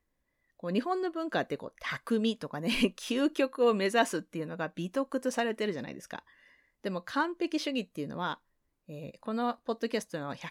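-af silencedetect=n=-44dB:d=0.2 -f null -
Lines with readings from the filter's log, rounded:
silence_start: 0.00
silence_end: 0.60 | silence_duration: 0.60
silence_start: 6.19
silence_end: 6.84 | silence_duration: 0.65
silence_start: 8.34
silence_end: 8.89 | silence_duration: 0.55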